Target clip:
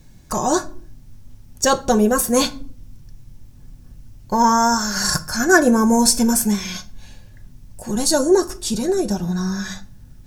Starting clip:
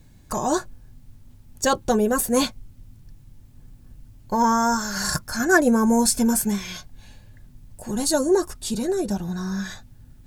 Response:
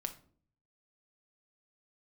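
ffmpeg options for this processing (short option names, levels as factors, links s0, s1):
-filter_complex "[0:a]asplit=2[s0][s1];[s1]equalizer=f=5700:t=o:w=0.47:g=8.5[s2];[1:a]atrim=start_sample=2205[s3];[s2][s3]afir=irnorm=-1:irlink=0,volume=1.33[s4];[s0][s4]amix=inputs=2:normalize=0,volume=0.708"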